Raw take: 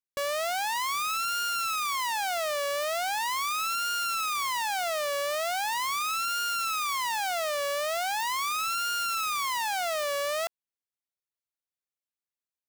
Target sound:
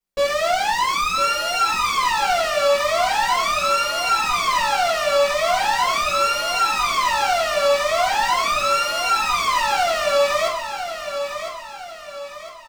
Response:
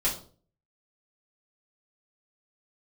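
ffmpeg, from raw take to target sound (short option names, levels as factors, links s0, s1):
-filter_complex "[0:a]acrossover=split=7900[s0][s1];[s1]acompressor=threshold=0.00178:ratio=4:attack=1:release=60[s2];[s0][s2]amix=inputs=2:normalize=0,asplit=2[s3][s4];[s4]acrusher=samples=12:mix=1:aa=0.000001,volume=0.266[s5];[s3][s5]amix=inputs=2:normalize=0,aecho=1:1:1006|2012|3018|4024|5030:0.376|0.162|0.0695|0.0299|0.0128[s6];[1:a]atrim=start_sample=2205[s7];[s6][s7]afir=irnorm=-1:irlink=0"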